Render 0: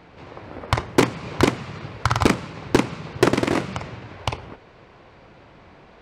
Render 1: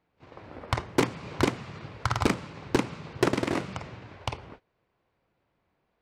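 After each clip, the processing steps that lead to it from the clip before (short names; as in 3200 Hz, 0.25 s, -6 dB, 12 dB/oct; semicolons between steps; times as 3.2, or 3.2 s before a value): gate -40 dBFS, range -20 dB; gain -7 dB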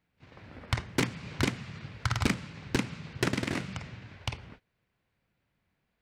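band shelf 610 Hz -8 dB 2.3 oct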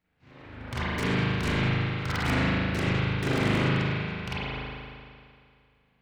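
transient shaper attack -3 dB, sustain +11 dB; overloaded stage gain 25 dB; spring tank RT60 2.2 s, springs 38 ms, chirp 20 ms, DRR -9.5 dB; gain -3.5 dB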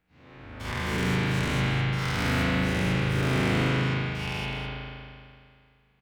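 spectral dilation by 0.24 s; doubler 22 ms -11 dB; echo 0.205 s -9.5 dB; gain -5.5 dB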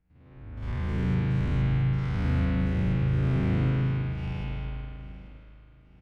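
stepped spectrum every 50 ms; RIAA curve playback; feedback echo 0.839 s, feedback 41%, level -18 dB; gain -8.5 dB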